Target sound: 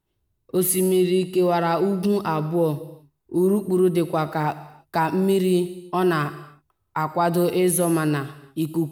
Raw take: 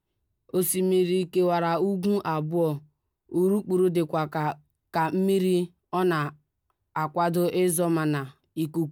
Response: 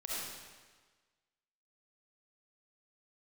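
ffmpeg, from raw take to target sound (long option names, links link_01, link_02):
-filter_complex "[0:a]asplit=2[link_01][link_02];[link_02]equalizer=frequency=12000:width_type=o:width=1.4:gain=9.5[link_03];[1:a]atrim=start_sample=2205,afade=type=out:start_time=0.37:duration=0.01,atrim=end_sample=16758[link_04];[link_03][link_04]afir=irnorm=-1:irlink=0,volume=-15dB[link_05];[link_01][link_05]amix=inputs=2:normalize=0,volume=2.5dB"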